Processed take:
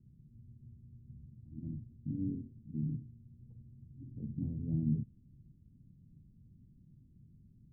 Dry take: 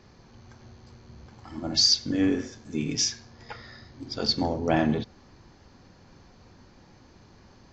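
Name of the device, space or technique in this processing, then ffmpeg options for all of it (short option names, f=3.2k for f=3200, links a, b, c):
the neighbour's flat through the wall: -af "lowpass=f=230:w=0.5412,lowpass=f=230:w=1.3066,equalizer=f=140:t=o:w=0.57:g=8,volume=-7dB"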